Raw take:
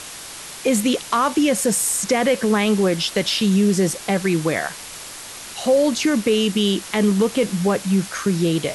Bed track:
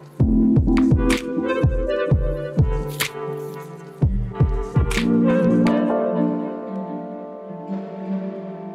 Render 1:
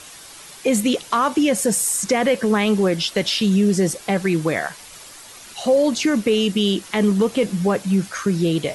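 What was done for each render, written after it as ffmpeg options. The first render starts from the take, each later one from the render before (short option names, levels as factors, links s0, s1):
-af "afftdn=nr=8:nf=-36"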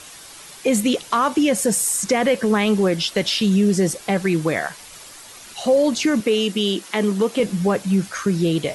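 -filter_complex "[0:a]asettb=1/sr,asplit=3[s0][s1][s2];[s0]atrim=end=6.204[s3];[s1]atrim=start=6.2:end=7.4,asetpts=PTS-STARTPTS,afade=t=in:d=0.004:c=qsin,afade=t=out:st=1.196:d=0.004:c=qsin,highpass=220[s4];[s2]atrim=start=7.396[s5];[s3][s4]acrossfade=d=0.004:c1=hsin:c2=qsin[s6];[s6][s5]acrossfade=d=0.004:c1=qsin:c2=hsin"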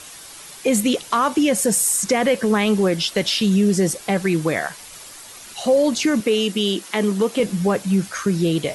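-af "highshelf=f=9600:g=4.5"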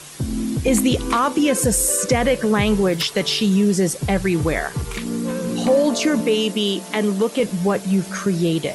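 -filter_complex "[1:a]volume=0.422[s0];[0:a][s0]amix=inputs=2:normalize=0"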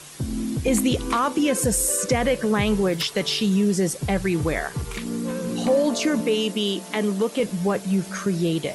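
-af "volume=0.668"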